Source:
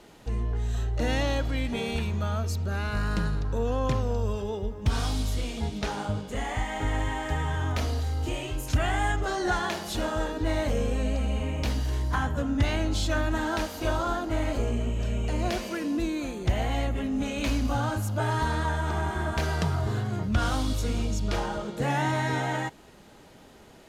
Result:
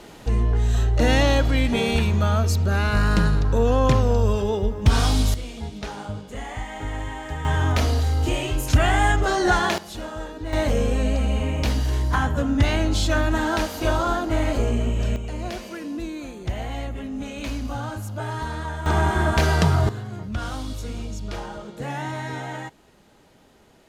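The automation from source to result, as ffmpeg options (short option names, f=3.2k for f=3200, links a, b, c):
-af "asetnsamples=n=441:p=0,asendcmd='5.34 volume volume -2dB;7.45 volume volume 7.5dB;9.78 volume volume -4dB;10.53 volume volume 5.5dB;15.16 volume volume -2.5dB;18.86 volume volume 8.5dB;19.89 volume volume -3.5dB',volume=8.5dB"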